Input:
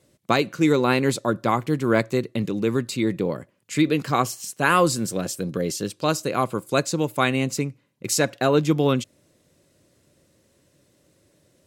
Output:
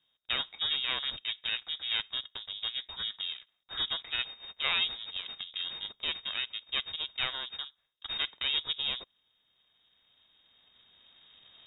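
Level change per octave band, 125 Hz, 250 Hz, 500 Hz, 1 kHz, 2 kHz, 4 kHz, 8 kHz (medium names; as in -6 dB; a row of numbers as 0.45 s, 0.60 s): -32.5 dB, -35.5 dB, -30.0 dB, -20.5 dB, -9.0 dB, +4.0 dB, under -40 dB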